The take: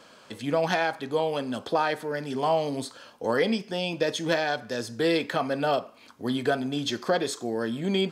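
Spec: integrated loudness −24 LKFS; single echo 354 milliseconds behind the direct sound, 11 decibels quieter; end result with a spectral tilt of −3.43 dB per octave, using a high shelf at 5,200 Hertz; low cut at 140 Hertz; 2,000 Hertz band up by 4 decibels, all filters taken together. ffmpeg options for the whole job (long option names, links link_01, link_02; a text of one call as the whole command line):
ffmpeg -i in.wav -af "highpass=140,equalizer=frequency=2000:width_type=o:gain=4,highshelf=frequency=5200:gain=8.5,aecho=1:1:354:0.282,volume=2dB" out.wav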